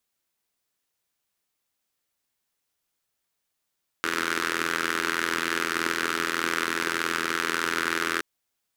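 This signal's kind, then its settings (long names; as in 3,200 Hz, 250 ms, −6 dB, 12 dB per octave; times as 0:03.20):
pulse-train model of a four-cylinder engine, steady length 4.17 s, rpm 2,500, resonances 360/1,400 Hz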